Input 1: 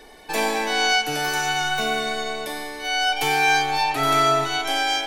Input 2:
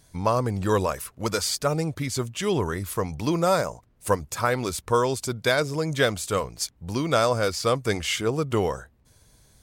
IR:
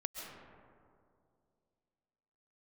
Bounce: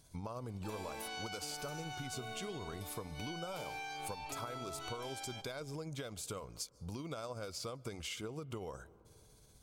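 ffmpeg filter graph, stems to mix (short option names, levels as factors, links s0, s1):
-filter_complex "[0:a]alimiter=limit=0.158:level=0:latency=1,adelay=350,volume=0.188,asplit=2[s0][s1];[s1]volume=0.2[s2];[1:a]acompressor=threshold=0.0562:ratio=6,tremolo=f=16:d=0.29,volume=0.531,asplit=2[s3][s4];[s4]volume=0.0708[s5];[2:a]atrim=start_sample=2205[s6];[s2][s5]amix=inputs=2:normalize=0[s7];[s7][s6]afir=irnorm=-1:irlink=0[s8];[s0][s3][s8]amix=inputs=3:normalize=0,equalizer=f=1800:w=7:g=-12.5,acompressor=threshold=0.00891:ratio=4"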